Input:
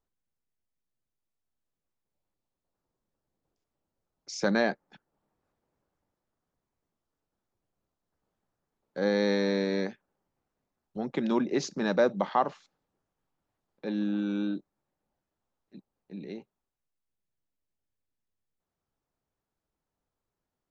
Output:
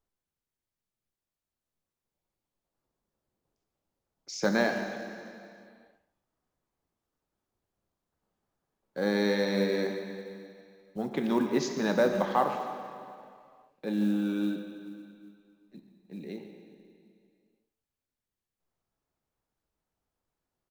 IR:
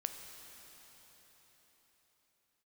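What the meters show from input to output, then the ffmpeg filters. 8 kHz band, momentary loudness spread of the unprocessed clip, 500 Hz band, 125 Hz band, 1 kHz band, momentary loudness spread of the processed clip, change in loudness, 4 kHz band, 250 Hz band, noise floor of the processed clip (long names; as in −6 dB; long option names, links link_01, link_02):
can't be measured, 18 LU, 0.0 dB, +0.5 dB, +0.5 dB, 19 LU, −0.5 dB, +0.5 dB, +0.5 dB, below −85 dBFS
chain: -filter_complex "[0:a]asplit=2[link_01][link_02];[link_02]adelay=140,highpass=300,lowpass=3400,asoftclip=type=hard:threshold=-21.5dB,volume=-12dB[link_03];[link_01][link_03]amix=inputs=2:normalize=0[link_04];[1:a]atrim=start_sample=2205,asetrate=88200,aresample=44100[link_05];[link_04][link_05]afir=irnorm=-1:irlink=0,acrusher=bits=8:mode=log:mix=0:aa=0.000001,volume=7dB"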